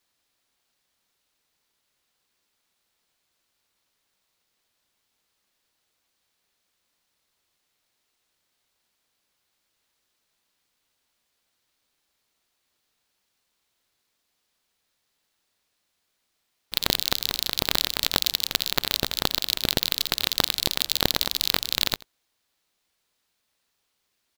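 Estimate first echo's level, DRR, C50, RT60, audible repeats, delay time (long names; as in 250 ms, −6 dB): −21.5 dB, no reverb audible, no reverb audible, no reverb audible, 1, 85 ms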